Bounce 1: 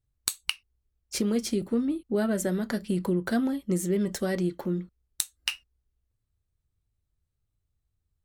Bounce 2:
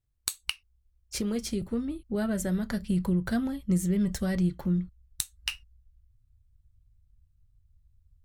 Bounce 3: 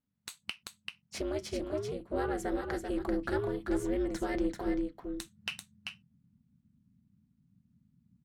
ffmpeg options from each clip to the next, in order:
-af "asubboost=boost=11.5:cutoff=110,volume=-2.5dB"
-filter_complex "[0:a]aecho=1:1:389:0.501,aeval=exprs='val(0)*sin(2*PI*150*n/s)':c=same,asplit=2[a][b];[b]highpass=f=720:p=1,volume=14dB,asoftclip=type=tanh:threshold=-11.5dB[c];[a][c]amix=inputs=2:normalize=0,lowpass=f=1.6k:p=1,volume=-6dB,volume=-3dB"

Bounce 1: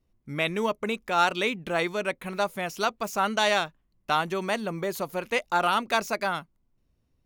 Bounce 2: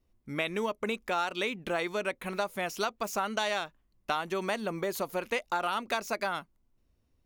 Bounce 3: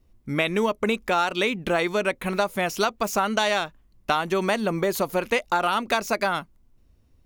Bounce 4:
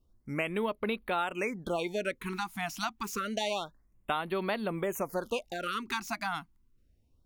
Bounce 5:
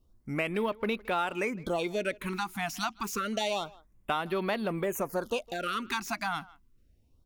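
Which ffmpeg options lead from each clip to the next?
-af "equalizer=f=150:t=o:w=0.64:g=-6,acompressor=threshold=-27dB:ratio=6"
-af "lowshelf=f=210:g=5.5,volume=7.5dB"
-af "afftfilt=real='re*(1-between(b*sr/1024,450*pow(6800/450,0.5+0.5*sin(2*PI*0.28*pts/sr))/1.41,450*pow(6800/450,0.5+0.5*sin(2*PI*0.28*pts/sr))*1.41))':imag='im*(1-between(b*sr/1024,450*pow(6800/450,0.5+0.5*sin(2*PI*0.28*pts/sr))/1.41,450*pow(6800/450,0.5+0.5*sin(2*PI*0.28*pts/sr))*1.41))':win_size=1024:overlap=0.75,volume=-8.5dB"
-filter_complex "[0:a]asplit=2[a][b];[b]asoftclip=type=tanh:threshold=-35dB,volume=-7.5dB[c];[a][c]amix=inputs=2:normalize=0,asplit=2[d][e];[e]adelay=160,highpass=300,lowpass=3.4k,asoftclip=type=hard:threshold=-25dB,volume=-21dB[f];[d][f]amix=inputs=2:normalize=0"

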